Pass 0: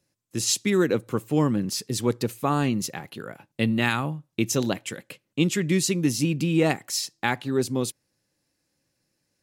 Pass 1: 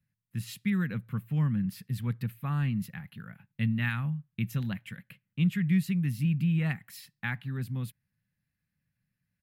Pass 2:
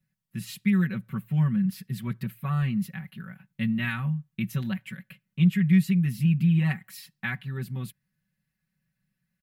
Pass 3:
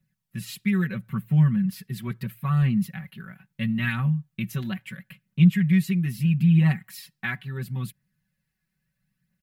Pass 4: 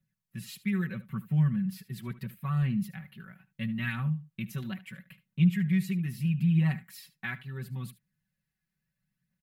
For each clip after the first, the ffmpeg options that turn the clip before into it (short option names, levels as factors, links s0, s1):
-af "firequalizer=gain_entry='entry(190,0);entry(320,-25);entry(1700,-5);entry(6200,-28);entry(13000,-8)':delay=0.05:min_phase=1"
-af "aecho=1:1:5.3:0.99"
-af "aphaser=in_gain=1:out_gain=1:delay=3.1:decay=0.36:speed=0.75:type=triangular,volume=1.19"
-af "aecho=1:1:74:0.141,volume=0.473"